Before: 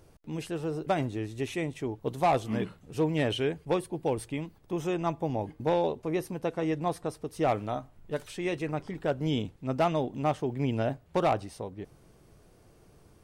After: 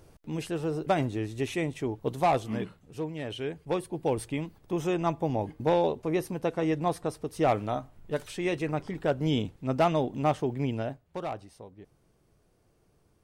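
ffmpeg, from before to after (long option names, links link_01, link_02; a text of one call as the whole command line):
ffmpeg -i in.wav -af "volume=13.5dB,afade=type=out:start_time=2.01:duration=1.18:silence=0.266073,afade=type=in:start_time=3.19:duration=1.02:silence=0.266073,afade=type=out:start_time=10.43:duration=0.61:silence=0.281838" out.wav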